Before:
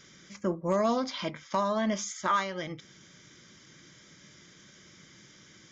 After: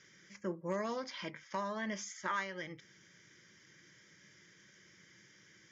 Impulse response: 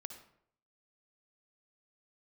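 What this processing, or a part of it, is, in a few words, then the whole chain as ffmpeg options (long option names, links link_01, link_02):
car door speaker: -af "highpass=100,equalizer=frequency=150:width_type=q:width=4:gain=-3,equalizer=frequency=250:width_type=q:width=4:gain=-9,equalizer=frequency=690:width_type=q:width=4:gain=-9,equalizer=frequency=1200:width_type=q:width=4:gain=-5,equalizer=frequency=1800:width_type=q:width=4:gain=7,equalizer=frequency=3800:width_type=q:width=4:gain=-7,lowpass=frequency=6900:width=0.5412,lowpass=frequency=6900:width=1.3066,volume=-6.5dB"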